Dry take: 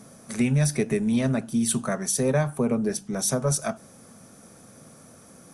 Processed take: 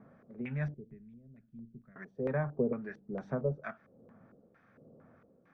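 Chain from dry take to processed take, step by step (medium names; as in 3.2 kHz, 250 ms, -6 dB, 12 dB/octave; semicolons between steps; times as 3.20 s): 0.74–1.96 s: amplifier tone stack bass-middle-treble 10-0-1; harmonic tremolo 1.2 Hz, depth 70%, crossover 1.2 kHz; distance through air 150 m; LFO low-pass square 2.2 Hz 480–1800 Hz; trim -8.5 dB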